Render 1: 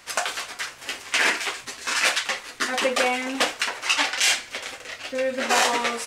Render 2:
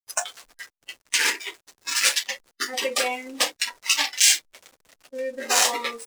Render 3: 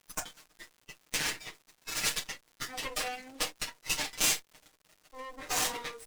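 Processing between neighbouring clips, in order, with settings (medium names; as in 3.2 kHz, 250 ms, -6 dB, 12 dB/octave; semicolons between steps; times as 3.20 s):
hysteresis with a dead band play -26 dBFS; tone controls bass -10 dB, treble +13 dB; spectral noise reduction 14 dB; trim -3 dB
comb filter that takes the minimum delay 6.5 ms; crackle 150 per s -39 dBFS; trim -9 dB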